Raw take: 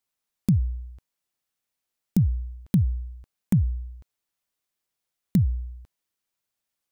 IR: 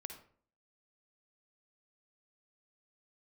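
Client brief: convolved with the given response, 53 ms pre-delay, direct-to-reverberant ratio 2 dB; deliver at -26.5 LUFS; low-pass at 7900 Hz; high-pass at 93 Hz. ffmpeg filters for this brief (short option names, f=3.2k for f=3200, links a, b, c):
-filter_complex "[0:a]highpass=93,lowpass=7.9k,asplit=2[a][b];[1:a]atrim=start_sample=2205,adelay=53[c];[b][c]afir=irnorm=-1:irlink=0,volume=1.5dB[d];[a][d]amix=inputs=2:normalize=0,volume=-0.5dB"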